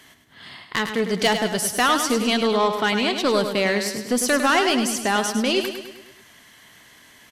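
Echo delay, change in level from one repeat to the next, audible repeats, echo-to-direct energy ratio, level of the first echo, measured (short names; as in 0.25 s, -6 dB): 0.103 s, -5.5 dB, 5, -6.5 dB, -8.0 dB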